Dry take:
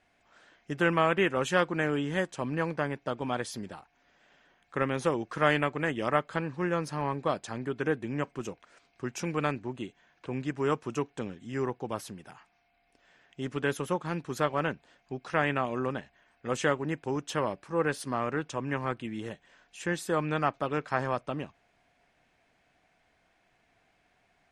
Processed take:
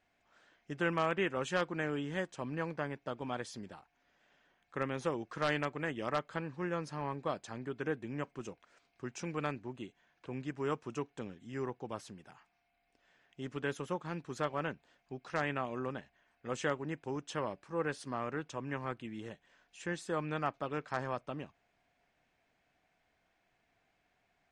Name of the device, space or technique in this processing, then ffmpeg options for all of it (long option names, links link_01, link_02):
synthesiser wavefolder: -af "aeval=exprs='0.224*(abs(mod(val(0)/0.224+3,4)-2)-1)':channel_layout=same,lowpass=frequency=8800:width=0.5412,lowpass=frequency=8800:width=1.3066,volume=-7dB"